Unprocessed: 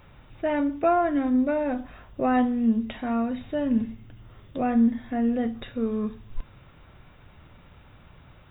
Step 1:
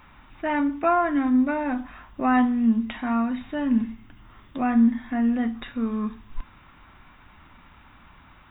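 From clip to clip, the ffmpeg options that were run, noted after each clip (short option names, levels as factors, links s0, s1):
-af "equalizer=f=125:t=o:w=1:g=-9,equalizer=f=250:t=o:w=1:g=6,equalizer=f=500:t=o:w=1:g=-10,equalizer=f=1000:t=o:w=1:g=8,equalizer=f=2000:t=o:w=1:g=4"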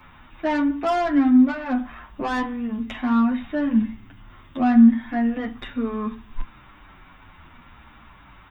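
-filter_complex "[0:a]acrossover=split=240|540[s0][s1][s2];[s2]asoftclip=type=tanh:threshold=0.0501[s3];[s0][s1][s3]amix=inputs=3:normalize=0,asplit=2[s4][s5];[s5]adelay=8.8,afreqshift=-0.68[s6];[s4][s6]amix=inputs=2:normalize=1,volume=2"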